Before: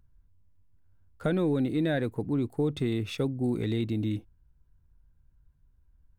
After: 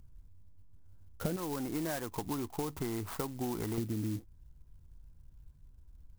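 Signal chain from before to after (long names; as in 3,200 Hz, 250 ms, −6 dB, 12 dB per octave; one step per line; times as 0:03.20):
running median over 15 samples
0:01.36–0:03.78: octave-band graphic EQ 125/250/500/1,000 Hz −12/−7/−9/+11 dB
downward compressor 10 to 1, threshold −39 dBFS, peak gain reduction 15.5 dB
high-shelf EQ 3,700 Hz −9.5 dB
converter with an unsteady clock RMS 0.094 ms
level +7 dB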